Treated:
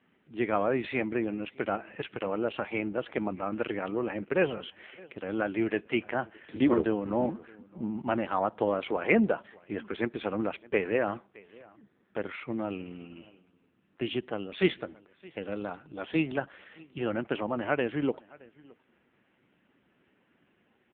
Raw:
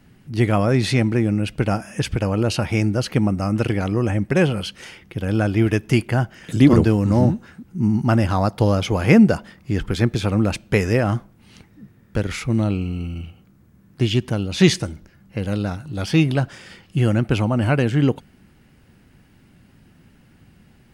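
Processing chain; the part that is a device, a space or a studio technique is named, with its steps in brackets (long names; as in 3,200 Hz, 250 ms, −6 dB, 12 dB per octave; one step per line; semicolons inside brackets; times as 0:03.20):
satellite phone (band-pass filter 360–3,200 Hz; single-tap delay 617 ms −24 dB; level −4.5 dB; AMR narrowband 5.9 kbit/s 8,000 Hz)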